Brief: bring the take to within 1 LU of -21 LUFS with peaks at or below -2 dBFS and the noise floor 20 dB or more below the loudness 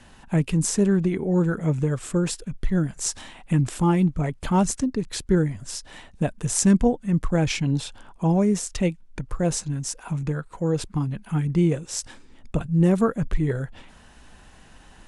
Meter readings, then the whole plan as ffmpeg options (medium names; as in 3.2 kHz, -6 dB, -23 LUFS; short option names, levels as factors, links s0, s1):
loudness -24.0 LUFS; peak level -3.0 dBFS; loudness target -21.0 LUFS
-> -af "volume=1.41,alimiter=limit=0.794:level=0:latency=1"